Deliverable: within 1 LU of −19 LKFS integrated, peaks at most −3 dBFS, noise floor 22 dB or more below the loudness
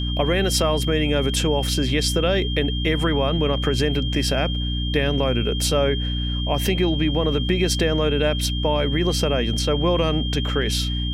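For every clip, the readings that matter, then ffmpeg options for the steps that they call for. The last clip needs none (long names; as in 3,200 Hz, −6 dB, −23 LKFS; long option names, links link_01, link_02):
mains hum 60 Hz; hum harmonics up to 300 Hz; level of the hum −22 dBFS; interfering tone 3,200 Hz; level of the tone −29 dBFS; integrated loudness −21.5 LKFS; sample peak −6.5 dBFS; target loudness −19.0 LKFS
→ -af "bandreject=frequency=60:width_type=h:width=6,bandreject=frequency=120:width_type=h:width=6,bandreject=frequency=180:width_type=h:width=6,bandreject=frequency=240:width_type=h:width=6,bandreject=frequency=300:width_type=h:width=6"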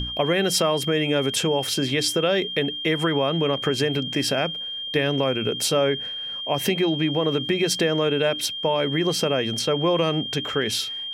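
mains hum none found; interfering tone 3,200 Hz; level of the tone −29 dBFS
→ -af "bandreject=frequency=3200:width=30"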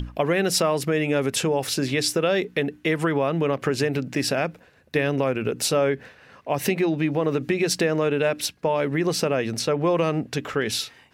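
interfering tone none found; integrated loudness −23.5 LKFS; sample peak −8.5 dBFS; target loudness −19.0 LKFS
→ -af "volume=4.5dB"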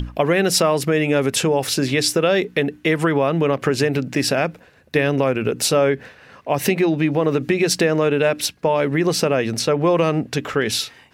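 integrated loudness −19.0 LKFS; sample peak −4.0 dBFS; background noise floor −50 dBFS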